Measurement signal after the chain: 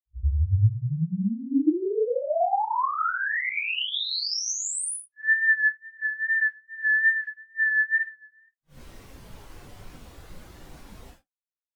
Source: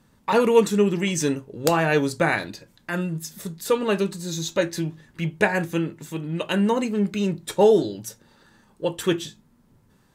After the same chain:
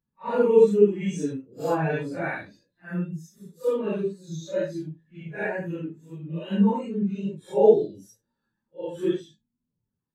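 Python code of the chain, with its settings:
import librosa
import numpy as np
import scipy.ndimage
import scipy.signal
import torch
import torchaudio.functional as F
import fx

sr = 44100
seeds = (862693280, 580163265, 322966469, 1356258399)

y = fx.phase_scramble(x, sr, seeds[0], window_ms=200)
y = fx.wow_flutter(y, sr, seeds[1], rate_hz=2.1, depth_cents=29.0)
y = fx.spectral_expand(y, sr, expansion=1.5)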